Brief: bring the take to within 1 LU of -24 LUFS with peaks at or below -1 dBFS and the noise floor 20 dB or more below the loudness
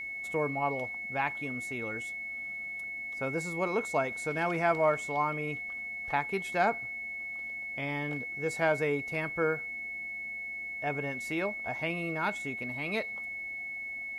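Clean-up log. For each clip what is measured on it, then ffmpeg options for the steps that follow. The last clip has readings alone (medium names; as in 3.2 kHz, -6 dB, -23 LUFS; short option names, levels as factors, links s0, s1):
steady tone 2.2 kHz; tone level -36 dBFS; loudness -32.5 LUFS; peak level -15.0 dBFS; loudness target -24.0 LUFS
-> -af "bandreject=f=2200:w=30"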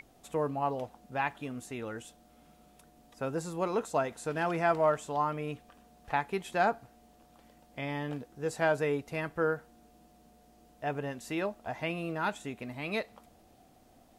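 steady tone not found; loudness -33.5 LUFS; peak level -15.5 dBFS; loudness target -24.0 LUFS
-> -af "volume=2.99"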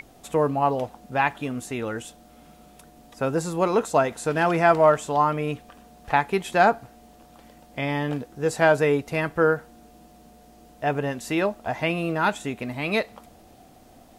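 loudness -24.0 LUFS; peak level -6.0 dBFS; noise floor -52 dBFS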